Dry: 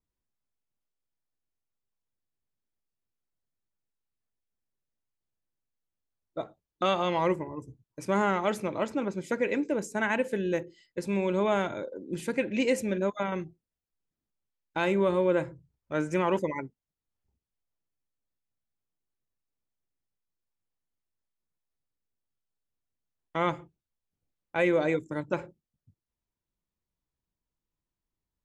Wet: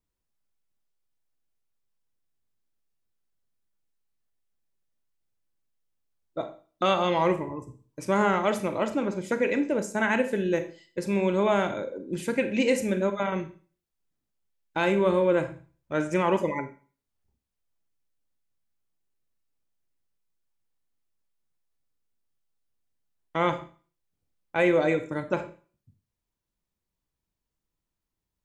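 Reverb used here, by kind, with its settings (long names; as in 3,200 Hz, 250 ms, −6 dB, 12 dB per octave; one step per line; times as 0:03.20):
four-comb reverb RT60 0.4 s, combs from 28 ms, DRR 9 dB
level +2.5 dB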